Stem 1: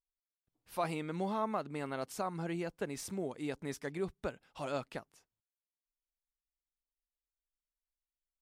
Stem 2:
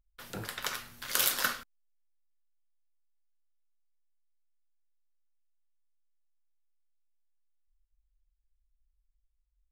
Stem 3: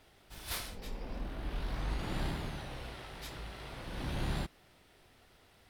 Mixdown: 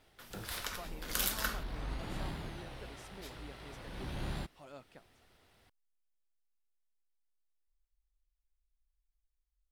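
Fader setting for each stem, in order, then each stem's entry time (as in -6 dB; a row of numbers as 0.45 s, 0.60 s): -14.5 dB, -6.0 dB, -4.0 dB; 0.00 s, 0.00 s, 0.00 s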